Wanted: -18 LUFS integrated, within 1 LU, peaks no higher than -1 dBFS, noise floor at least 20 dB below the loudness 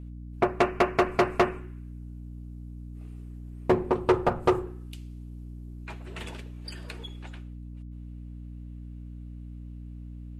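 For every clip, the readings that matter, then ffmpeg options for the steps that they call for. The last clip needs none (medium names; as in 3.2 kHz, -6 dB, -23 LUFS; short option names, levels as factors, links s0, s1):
hum 60 Hz; highest harmonic 300 Hz; hum level -38 dBFS; loudness -28.0 LUFS; peak level -11.5 dBFS; loudness target -18.0 LUFS
-> -af "bandreject=f=60:t=h:w=6,bandreject=f=120:t=h:w=6,bandreject=f=180:t=h:w=6,bandreject=f=240:t=h:w=6,bandreject=f=300:t=h:w=6"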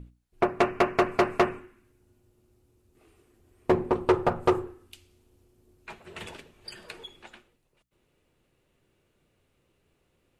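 hum not found; loudness -26.0 LUFS; peak level -11.5 dBFS; loudness target -18.0 LUFS
-> -af "volume=2.51"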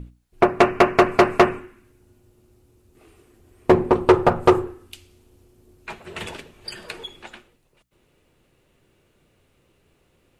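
loudness -18.0 LUFS; peak level -3.5 dBFS; noise floor -64 dBFS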